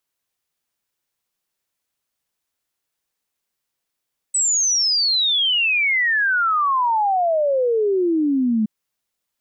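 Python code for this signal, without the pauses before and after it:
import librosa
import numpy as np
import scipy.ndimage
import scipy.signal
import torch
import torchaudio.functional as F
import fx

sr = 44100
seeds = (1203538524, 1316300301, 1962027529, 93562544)

y = fx.ess(sr, length_s=4.32, from_hz=8100.0, to_hz=210.0, level_db=-15.5)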